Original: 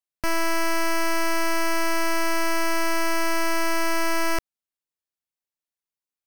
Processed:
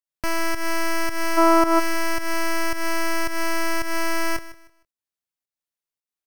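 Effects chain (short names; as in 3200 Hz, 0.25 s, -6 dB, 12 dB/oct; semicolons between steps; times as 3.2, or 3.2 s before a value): pump 110 bpm, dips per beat 1, -12 dB, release 0.202 s; spectral gain 1.38–1.79, 230–1500 Hz +12 dB; feedback echo 0.154 s, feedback 26%, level -16.5 dB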